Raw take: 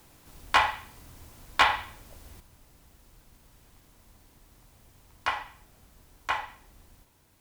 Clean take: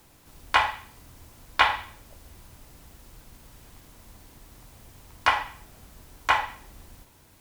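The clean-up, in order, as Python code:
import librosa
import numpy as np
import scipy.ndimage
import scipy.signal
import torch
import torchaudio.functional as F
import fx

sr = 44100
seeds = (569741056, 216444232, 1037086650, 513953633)

y = fx.fix_declip(x, sr, threshold_db=-12.0)
y = fx.gain(y, sr, db=fx.steps((0.0, 0.0), (2.4, 7.5)))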